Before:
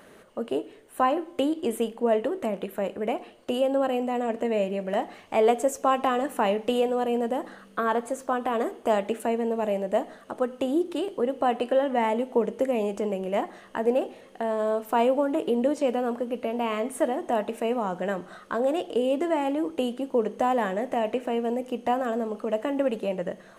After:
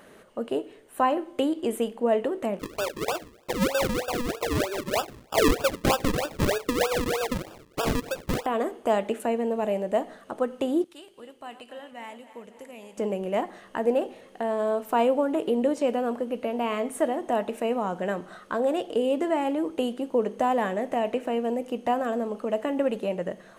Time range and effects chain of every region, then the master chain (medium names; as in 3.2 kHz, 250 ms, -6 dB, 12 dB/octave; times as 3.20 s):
2.59–8.46 s: steep high-pass 330 Hz 72 dB/octave + decimation with a swept rate 41× 3.2 Hz
10.84–12.98 s: backward echo that repeats 136 ms, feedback 74%, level -13.5 dB + amplifier tone stack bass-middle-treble 5-5-5
whole clip: none